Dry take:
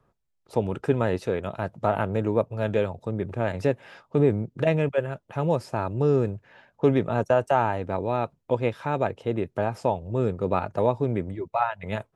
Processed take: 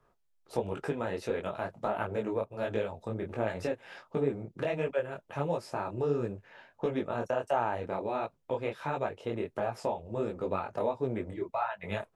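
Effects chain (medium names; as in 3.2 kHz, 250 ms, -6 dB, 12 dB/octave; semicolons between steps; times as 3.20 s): peaking EQ 110 Hz -8 dB 2.3 oct; compression 2.5:1, threshold -30 dBFS, peak gain reduction 9.5 dB; detune thickener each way 50 cents; trim +3.5 dB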